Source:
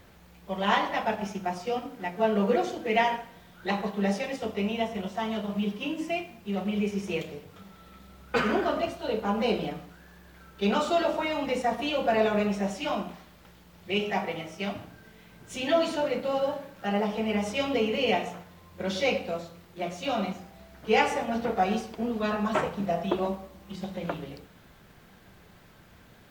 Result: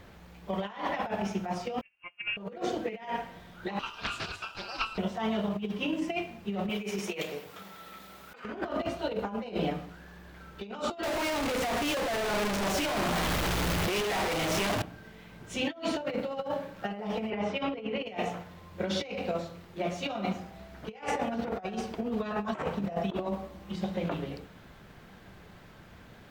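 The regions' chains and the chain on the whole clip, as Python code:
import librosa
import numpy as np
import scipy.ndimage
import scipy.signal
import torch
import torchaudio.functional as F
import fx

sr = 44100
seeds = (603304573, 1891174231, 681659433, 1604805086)

y = fx.chain(x, sr, fx.freq_invert(carrier_hz=3000),
    fx.upward_expand(threshold_db=-42.0, expansion=2.5), at=(1.81, 2.37))
y = fx.chain(y, sr, fx.cheby2_highpass(hz=180.0, order=4, stop_db=60),
    fx.ring_mod(carrier_hz=2000.0),
    fx.doppler_dist(depth_ms=0.5), at=(3.79, 4.98))
y = fx.chain(y, sr, fx.highpass(hz=580.0, slope=6),
    fx.high_shelf(hz=9400.0, db=10.5),
    fx.over_compress(threshold_db=-37.0, ratio=-0.5), at=(6.69, 8.45))
y = fx.chain(y, sr, fx.clip_1bit(),
    fx.peak_eq(hz=200.0, db=-6.5, octaves=0.31), at=(11.03, 14.82))
y = fx.chain(y, sr, fx.bandpass_edges(low_hz=100.0, high_hz=3100.0),
    fx.hum_notches(base_hz=50, count=6), at=(17.3, 18.06))
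y = fx.high_shelf(y, sr, hz=6400.0, db=-8.5)
y = fx.over_compress(y, sr, threshold_db=-31.0, ratio=-0.5)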